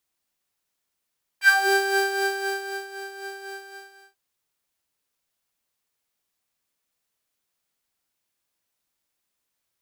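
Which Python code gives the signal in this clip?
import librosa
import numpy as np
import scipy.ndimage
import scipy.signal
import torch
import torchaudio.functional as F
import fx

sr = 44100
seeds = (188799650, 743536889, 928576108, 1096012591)

y = fx.sub_patch_tremolo(sr, seeds[0], note=79, wave='saw', wave2='square', interval_st=12, detune_cents=11, level2_db=-2.0, sub_db=-11.5, noise_db=-22, kind='highpass', cutoff_hz=230.0, q=3.3, env_oct=3.5, env_decay_s=0.26, env_sustain_pct=20, attack_ms=73.0, decay_s=1.39, sustain_db=-17.0, release_s=0.7, note_s=2.04, lfo_hz=3.9, tremolo_db=6.5)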